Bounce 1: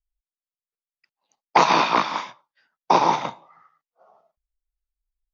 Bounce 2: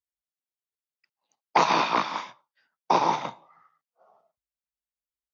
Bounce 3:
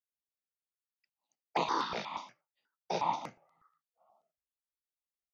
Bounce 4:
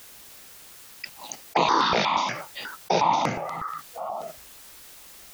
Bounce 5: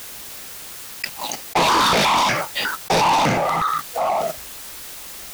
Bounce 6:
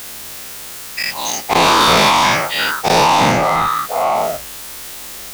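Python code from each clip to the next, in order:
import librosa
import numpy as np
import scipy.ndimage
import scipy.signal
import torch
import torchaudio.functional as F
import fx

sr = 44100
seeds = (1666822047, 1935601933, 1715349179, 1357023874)

y1 = scipy.signal.sosfilt(scipy.signal.butter(4, 76.0, 'highpass', fs=sr, output='sos'), x)
y1 = F.gain(torch.from_numpy(y1), -4.5).numpy()
y2 = fx.phaser_held(y1, sr, hz=8.3, low_hz=290.0, high_hz=5500.0)
y2 = F.gain(torch.from_numpy(y2), -7.0).numpy()
y3 = fx.env_flatten(y2, sr, amount_pct=70)
y3 = F.gain(torch.from_numpy(y3), 8.5).numpy()
y4 = fx.leveller(y3, sr, passes=5)
y4 = F.gain(torch.from_numpy(y4), -4.5).numpy()
y5 = fx.spec_dilate(y4, sr, span_ms=120)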